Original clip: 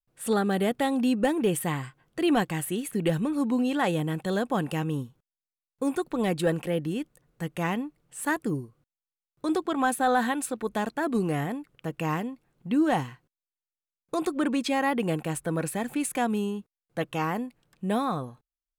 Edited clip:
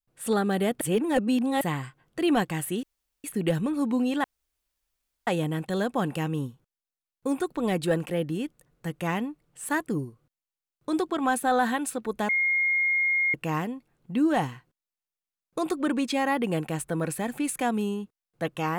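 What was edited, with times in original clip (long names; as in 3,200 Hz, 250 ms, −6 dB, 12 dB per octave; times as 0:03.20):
0:00.81–0:01.61: reverse
0:02.83: splice in room tone 0.41 s
0:03.83: splice in room tone 1.03 s
0:10.85–0:11.90: beep over 2,140 Hz −21 dBFS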